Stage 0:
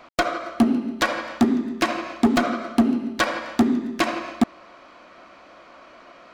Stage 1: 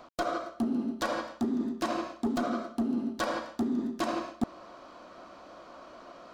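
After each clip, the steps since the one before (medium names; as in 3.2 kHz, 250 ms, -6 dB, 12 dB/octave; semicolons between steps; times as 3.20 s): peaking EQ 2.2 kHz -11 dB 0.97 oct; reverse; compression 6:1, threshold -28 dBFS, peak gain reduction 14 dB; reverse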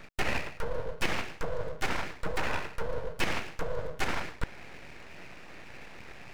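peaking EQ 1.3 kHz +9.5 dB 0.81 oct; full-wave rectifier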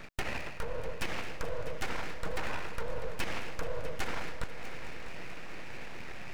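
compression, threshold -32 dBFS, peak gain reduction 11 dB; on a send: multi-head delay 216 ms, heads all three, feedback 62%, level -17 dB; on the sum: trim +2 dB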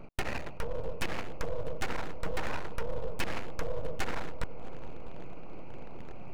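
local Wiener filter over 25 samples; trim +2.5 dB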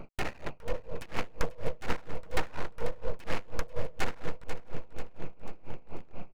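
on a send: feedback delay 491 ms, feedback 49%, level -12 dB; on the sum: logarithmic tremolo 4.2 Hz, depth 25 dB; trim +5.5 dB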